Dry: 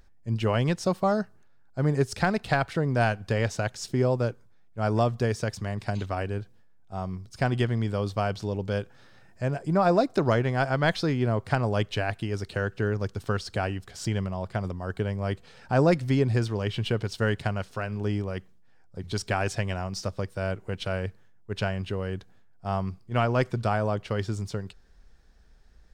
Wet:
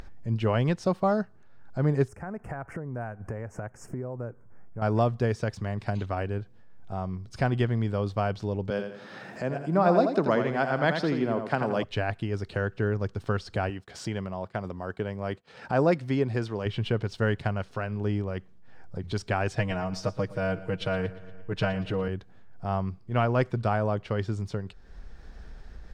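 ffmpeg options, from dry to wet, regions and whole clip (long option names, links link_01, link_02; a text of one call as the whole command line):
ffmpeg -i in.wav -filter_complex "[0:a]asettb=1/sr,asplit=3[link_01][link_02][link_03];[link_01]atrim=end=2.084[link_04];[link_02]atrim=start=2.08:end=4.82,asetpts=PTS-STARTPTS,afade=type=in:duration=0.004:curve=qsin,afade=type=out:start_time=2.736:duration=0.004:curve=qsin,tremolo=f=3.2:d=0.41,asuperstop=centerf=3800:order=4:qfactor=0.63,acompressor=threshold=-42dB:ratio=2:attack=3.2:release=140:knee=1:detection=peak[link_05];[link_03]atrim=start=4.816[link_06];[link_04][link_05]acrossfade=duration=0.004:curve1=hsin:curve2=qsin[link_07];[link_07][link_06]acrossfade=duration=0.004:curve1=qsin:curve2=hsin,asettb=1/sr,asplit=3[link_08][link_09][link_10];[link_08]atrim=end=8.704[link_11];[link_09]atrim=start=8.7:end=11.84,asetpts=PTS-STARTPTS,afade=type=in:duration=0.004:curve=qsin,afade=type=out:start_time=3.136:duration=0.004:curve=qsin,highpass=frequency=160:width=0.5412,highpass=frequency=160:width=1.3066,acompressor=mode=upward:threshold=-44dB:ratio=2.5:attack=3.2:release=140:knee=2.83:detection=peak,aecho=1:1:84|168|252|336:0.447|0.147|0.0486|0.0161,atrim=end_sample=138474[link_12];[link_10]atrim=start=11.836[link_13];[link_11][link_12]acrossfade=duration=0.004:curve1=hsin:curve2=qsin[link_14];[link_14][link_13]acrossfade=duration=0.004:curve1=qsin:curve2=hsin,asettb=1/sr,asplit=3[link_15][link_16][link_17];[link_15]atrim=end=13.704[link_18];[link_16]atrim=start=13.7:end=16.66,asetpts=PTS-STARTPTS,afade=type=in:duration=0.004:curve=qsin,afade=type=out:start_time=2.956:duration=0.004:curve=qsin,highpass=frequency=210:poles=1,agate=range=-33dB:threshold=-43dB:ratio=3:release=100:detection=peak,acompressor=mode=upward:threshold=-38dB:ratio=2.5:attack=3.2:release=140:knee=2.83:detection=peak[link_19];[link_17]atrim=start=16.656[link_20];[link_18][link_19]acrossfade=duration=0.004:curve1=hsin:curve2=qsin[link_21];[link_21][link_20]acrossfade=duration=0.004:curve1=qsin:curve2=hsin,asettb=1/sr,asplit=3[link_22][link_23][link_24];[link_22]atrim=end=19.574[link_25];[link_23]atrim=start=19.57:end=22.08,asetpts=PTS-STARTPTS,afade=type=in:duration=0.004:curve=qsin,afade=type=out:start_time=2.506:duration=0.004:curve=qsin,aecho=1:1:6.4:0.99,atrim=end_sample=110691,aecho=1:1:117|234|351|468:0.133|0.0613|0.0282|0.013,atrim=end_sample=110691[link_26];[link_24]atrim=start=22.076[link_27];[link_25][link_26]acrossfade=duration=0.004:curve1=hsin:curve2=qsin[link_28];[link_28][link_27]acrossfade=duration=0.004:curve1=qsin:curve2=hsin,acompressor=mode=upward:threshold=-29dB:ratio=2.5,lowpass=frequency=2600:poles=1" out.wav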